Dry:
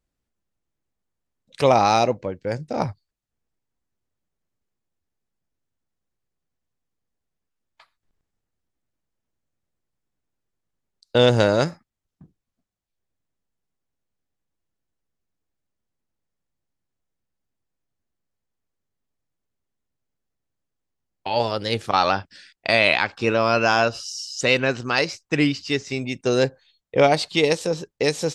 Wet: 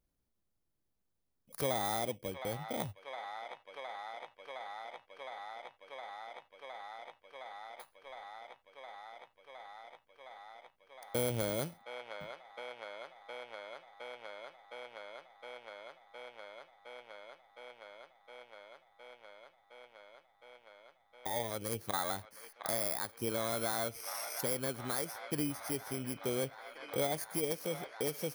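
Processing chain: FFT order left unsorted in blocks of 16 samples; on a send: band-limited delay 0.713 s, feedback 85%, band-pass 1500 Hz, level -13.5 dB; on the sum: compressor 2:1, threshold -42 dBFS, peak gain reduction 16.5 dB; gain -2 dB

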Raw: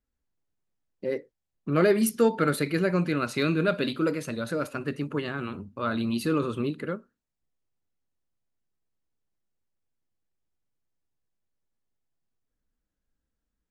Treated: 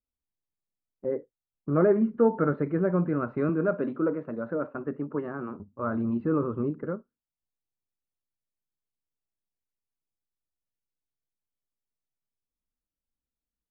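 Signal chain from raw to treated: 3.49–5.6 HPF 180 Hz 12 dB/oct; gate -37 dBFS, range -11 dB; LPF 1300 Hz 24 dB/oct

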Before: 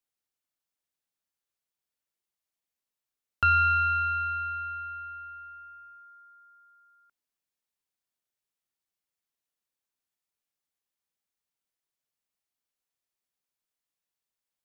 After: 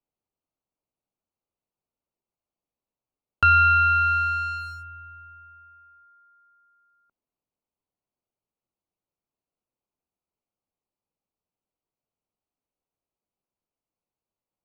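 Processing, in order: Wiener smoothing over 25 samples; in parallel at -3 dB: limiter -26.5 dBFS, peak gain reduction 9.5 dB; on the sum: gain +3.5 dB

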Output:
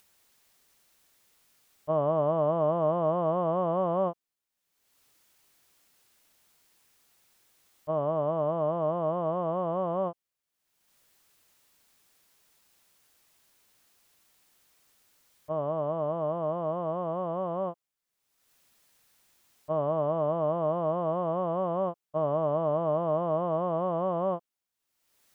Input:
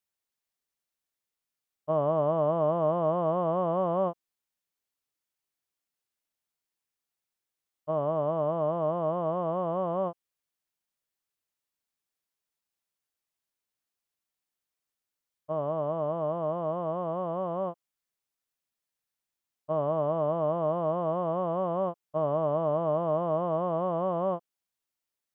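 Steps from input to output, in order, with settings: upward compressor, threshold -48 dBFS

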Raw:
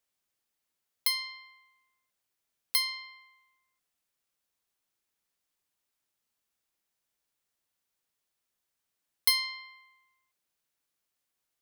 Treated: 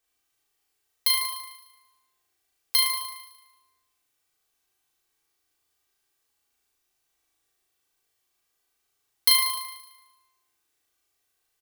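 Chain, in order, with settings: comb 2.6 ms, depth 62%; flutter echo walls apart 6.4 m, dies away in 1 s; gain +2.5 dB

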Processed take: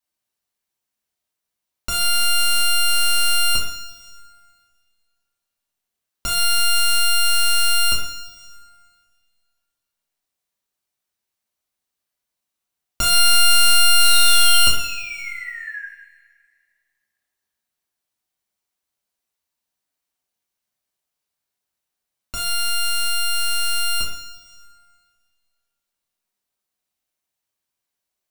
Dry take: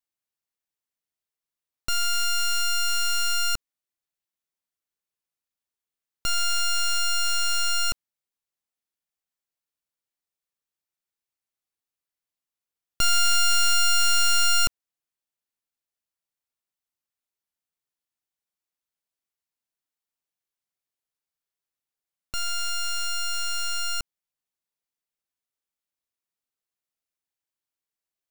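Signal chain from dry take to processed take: painted sound fall, 13.99–15.85, 1600–4100 Hz -39 dBFS; two-slope reverb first 0.56 s, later 2 s, from -16 dB, DRR -4.5 dB; gain +2 dB

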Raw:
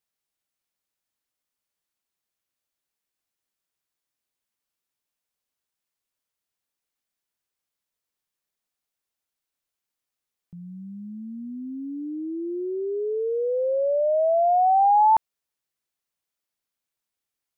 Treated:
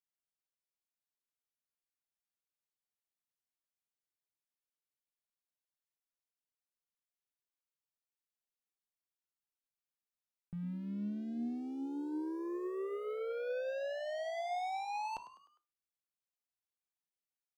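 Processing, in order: dynamic EQ 850 Hz, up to -7 dB, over -33 dBFS, Q 3.7; sample leveller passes 3; limiter -28.5 dBFS, peak gain reduction 10 dB; frequency-shifting echo 0.101 s, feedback 46%, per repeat +81 Hz, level -14 dB; on a send at -12.5 dB: reverb RT60 0.30 s, pre-delay 4 ms; on the sum: gain -9 dB

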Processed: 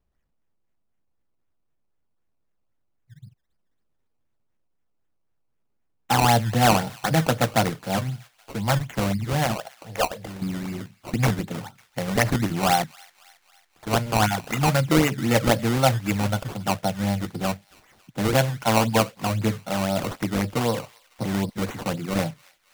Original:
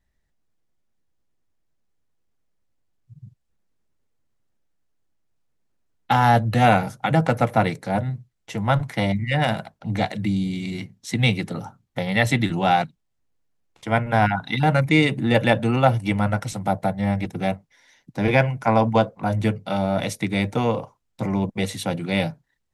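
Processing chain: 9.55–10.42 resonant low shelf 370 Hz -10.5 dB, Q 3; decimation with a swept rate 18×, swing 100% 3.9 Hz; thin delay 0.275 s, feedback 57%, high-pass 1500 Hz, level -22 dB; gain -2 dB

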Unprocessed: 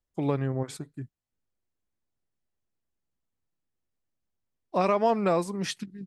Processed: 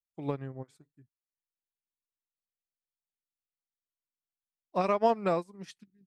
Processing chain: upward expander 2.5:1, over -36 dBFS

